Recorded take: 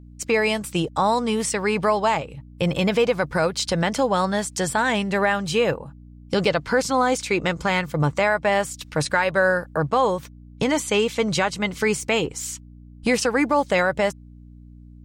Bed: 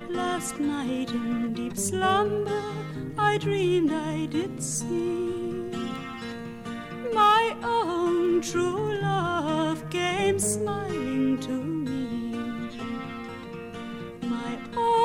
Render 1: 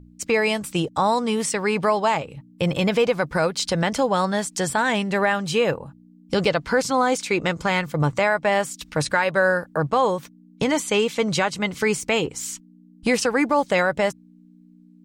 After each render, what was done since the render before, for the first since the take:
hum removal 60 Hz, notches 2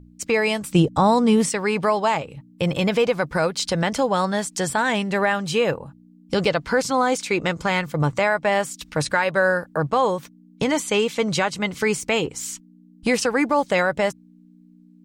0:00.72–0:01.49: low-shelf EQ 370 Hz +11 dB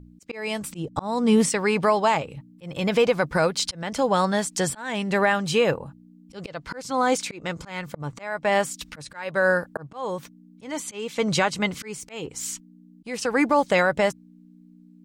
volume swells 376 ms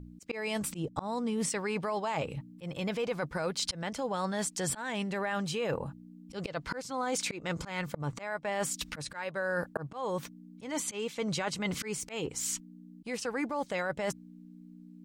brickwall limiter −14 dBFS, peak gain reduction 6 dB
reversed playback
downward compressor 6 to 1, threshold −30 dBFS, peak gain reduction 11.5 dB
reversed playback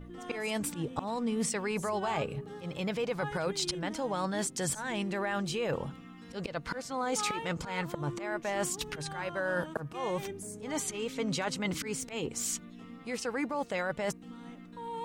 mix in bed −17.5 dB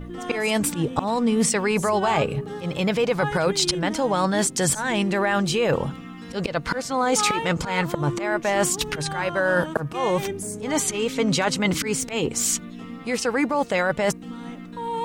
level +11 dB

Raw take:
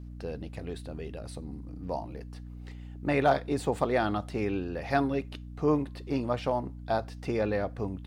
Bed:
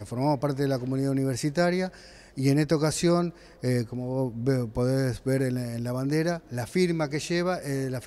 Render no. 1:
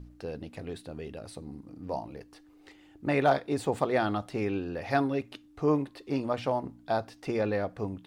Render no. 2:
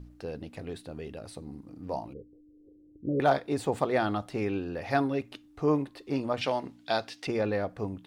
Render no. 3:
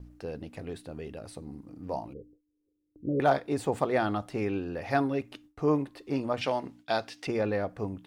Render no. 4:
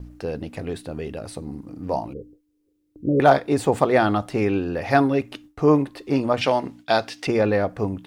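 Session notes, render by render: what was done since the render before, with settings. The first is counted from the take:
hum removal 60 Hz, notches 4
0:02.13–0:03.20: Chebyshev low-pass filter 520 Hz, order 5; 0:06.41–0:07.27: meter weighting curve D
parametric band 3,900 Hz −3 dB 0.63 octaves; noise gate with hold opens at −46 dBFS
level +9 dB

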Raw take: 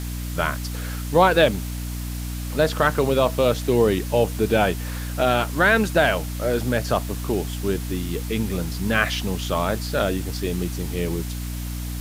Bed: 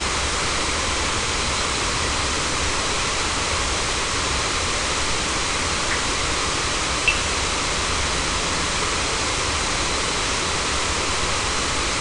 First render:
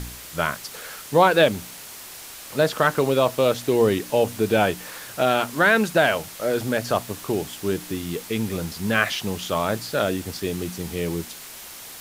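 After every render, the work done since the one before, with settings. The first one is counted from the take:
hum removal 60 Hz, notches 5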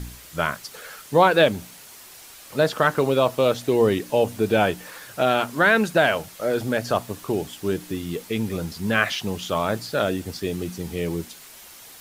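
broadband denoise 6 dB, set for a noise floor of −40 dBFS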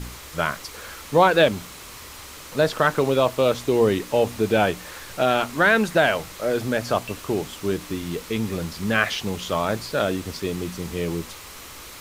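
mix in bed −20 dB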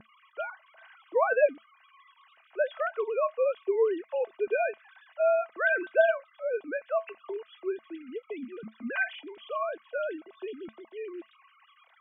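three sine waves on the formant tracks
tuned comb filter 220 Hz, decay 0.15 s, harmonics odd, mix 70%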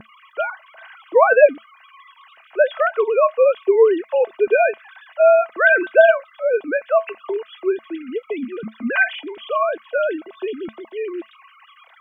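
level +12 dB
brickwall limiter −1 dBFS, peak gain reduction 2 dB

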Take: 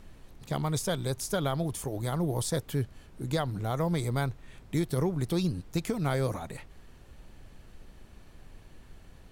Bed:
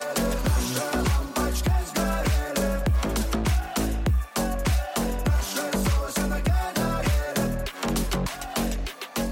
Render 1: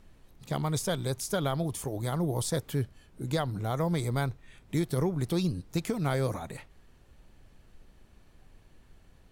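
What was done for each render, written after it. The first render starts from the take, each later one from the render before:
noise reduction from a noise print 6 dB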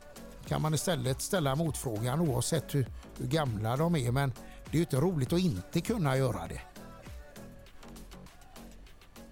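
mix in bed −23.5 dB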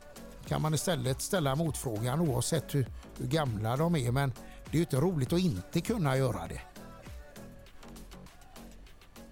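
no processing that can be heard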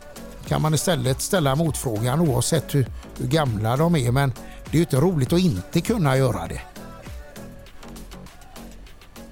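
level +9.5 dB

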